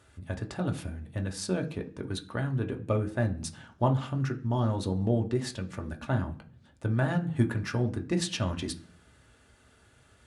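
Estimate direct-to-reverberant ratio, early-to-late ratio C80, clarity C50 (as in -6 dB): 3.0 dB, 19.5 dB, 14.5 dB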